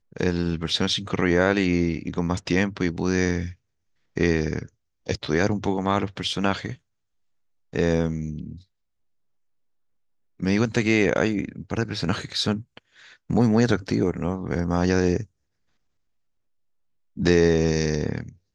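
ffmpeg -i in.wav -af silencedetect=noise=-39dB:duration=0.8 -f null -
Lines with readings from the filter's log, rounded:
silence_start: 6.75
silence_end: 7.73 | silence_duration: 0.98
silence_start: 8.58
silence_end: 10.40 | silence_duration: 1.82
silence_start: 15.24
silence_end: 17.17 | silence_duration: 1.93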